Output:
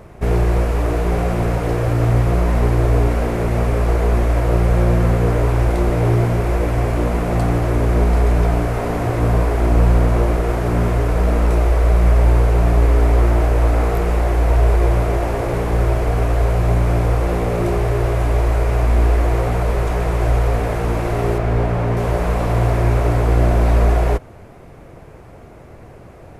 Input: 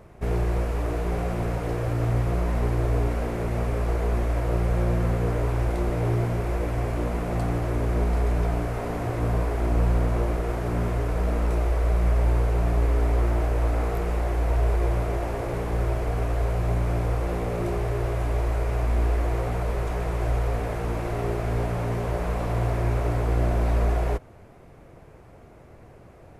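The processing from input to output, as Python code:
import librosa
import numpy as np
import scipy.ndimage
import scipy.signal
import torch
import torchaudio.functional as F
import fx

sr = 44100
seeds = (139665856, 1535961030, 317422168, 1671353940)

y = fx.high_shelf(x, sr, hz=5200.0, db=-11.5, at=(21.38, 21.97))
y = F.gain(torch.from_numpy(y), 8.5).numpy()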